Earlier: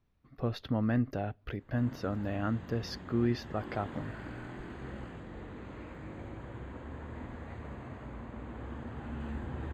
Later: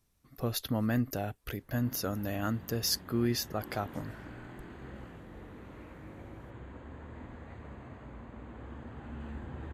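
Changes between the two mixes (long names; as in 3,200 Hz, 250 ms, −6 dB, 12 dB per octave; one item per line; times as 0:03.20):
speech: remove high-frequency loss of the air 290 metres
reverb: off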